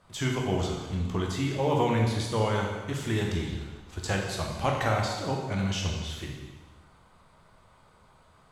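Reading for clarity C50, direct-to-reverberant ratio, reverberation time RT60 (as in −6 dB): 2.5 dB, −0.5 dB, 1.3 s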